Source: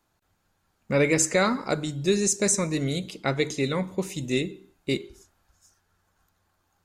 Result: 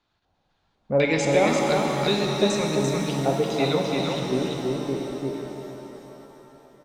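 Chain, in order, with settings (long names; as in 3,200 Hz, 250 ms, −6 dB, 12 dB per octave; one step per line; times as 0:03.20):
auto-filter low-pass square 2 Hz 750–3,800 Hz
single-tap delay 342 ms −3.5 dB
reverb with rising layers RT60 3.7 s, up +7 semitones, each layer −8 dB, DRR 1.5 dB
level −2.5 dB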